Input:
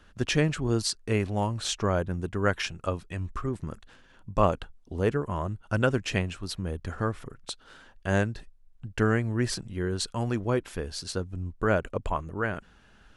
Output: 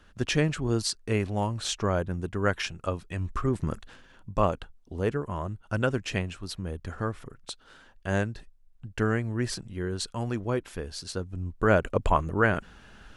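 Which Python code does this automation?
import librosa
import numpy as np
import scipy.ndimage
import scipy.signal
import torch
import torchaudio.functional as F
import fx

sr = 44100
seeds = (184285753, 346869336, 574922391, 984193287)

y = fx.gain(x, sr, db=fx.line((2.98, -0.5), (3.72, 6.5), (4.46, -2.0), (11.14, -2.0), (12.13, 6.5)))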